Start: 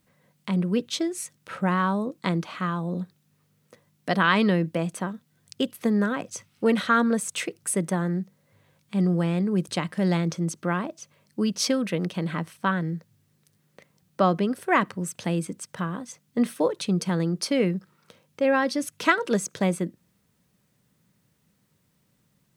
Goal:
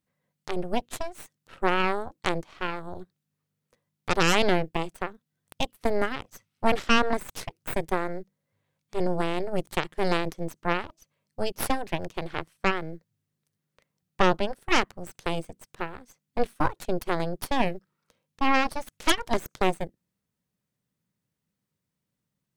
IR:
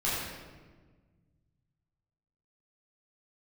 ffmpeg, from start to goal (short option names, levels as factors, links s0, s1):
-af "aeval=exprs='0.596*(cos(1*acos(clip(val(0)/0.596,-1,1)))-cos(1*PI/2))+0.133*(cos(3*acos(clip(val(0)/0.596,-1,1)))-cos(3*PI/2))+0.0944*(cos(4*acos(clip(val(0)/0.596,-1,1)))-cos(4*PI/2))+0.237*(cos(6*acos(clip(val(0)/0.596,-1,1)))-cos(6*PI/2))+0.0473*(cos(7*acos(clip(val(0)/0.596,-1,1)))-cos(7*PI/2))':c=same,volume=0.794"